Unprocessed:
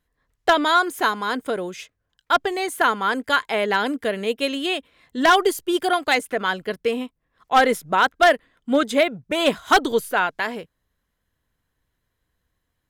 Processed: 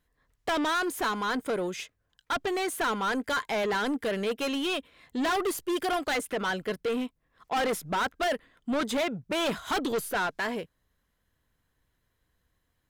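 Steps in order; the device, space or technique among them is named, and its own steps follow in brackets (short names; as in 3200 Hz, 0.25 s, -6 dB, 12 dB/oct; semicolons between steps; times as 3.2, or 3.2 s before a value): saturation between pre-emphasis and de-emphasis (high shelf 5700 Hz +9 dB; soft clip -24.5 dBFS, distortion -5 dB; high shelf 5700 Hz -9 dB)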